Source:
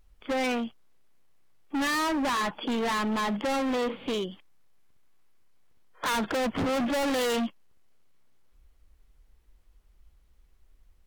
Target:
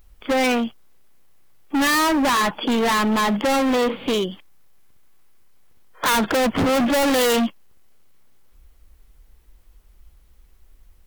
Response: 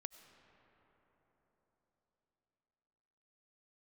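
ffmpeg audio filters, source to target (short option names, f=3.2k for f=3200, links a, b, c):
-af "highshelf=f=12k:g=10.5,volume=8.5dB"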